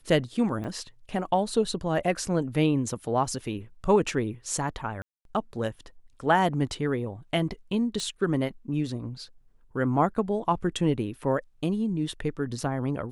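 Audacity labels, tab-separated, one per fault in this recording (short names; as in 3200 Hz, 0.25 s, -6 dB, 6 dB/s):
0.640000	0.650000	gap 5.5 ms
5.020000	5.250000	gap 0.232 s
8.000000	8.000000	pop -21 dBFS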